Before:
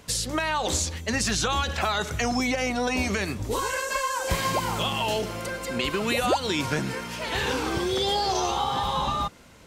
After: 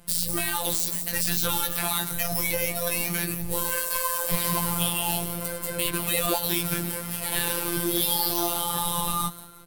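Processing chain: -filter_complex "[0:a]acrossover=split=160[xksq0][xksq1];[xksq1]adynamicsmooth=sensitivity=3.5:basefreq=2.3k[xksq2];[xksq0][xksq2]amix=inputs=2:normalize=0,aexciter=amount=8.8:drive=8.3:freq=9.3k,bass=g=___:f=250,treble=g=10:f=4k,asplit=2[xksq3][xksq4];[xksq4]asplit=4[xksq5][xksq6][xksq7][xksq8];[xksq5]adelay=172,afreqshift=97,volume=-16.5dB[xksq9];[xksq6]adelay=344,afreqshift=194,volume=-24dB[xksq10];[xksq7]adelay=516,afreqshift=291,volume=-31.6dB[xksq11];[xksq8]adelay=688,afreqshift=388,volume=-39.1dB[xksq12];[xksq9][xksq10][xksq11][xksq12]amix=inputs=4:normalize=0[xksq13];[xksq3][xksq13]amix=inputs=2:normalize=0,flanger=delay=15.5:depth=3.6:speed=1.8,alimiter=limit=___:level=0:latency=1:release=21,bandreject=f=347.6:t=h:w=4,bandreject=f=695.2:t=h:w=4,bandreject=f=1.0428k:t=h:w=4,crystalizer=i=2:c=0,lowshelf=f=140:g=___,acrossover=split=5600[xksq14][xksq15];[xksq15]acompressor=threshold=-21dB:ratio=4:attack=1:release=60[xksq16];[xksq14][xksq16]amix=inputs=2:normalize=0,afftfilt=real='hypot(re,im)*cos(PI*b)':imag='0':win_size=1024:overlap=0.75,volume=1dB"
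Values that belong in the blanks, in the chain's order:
2, -9dB, 10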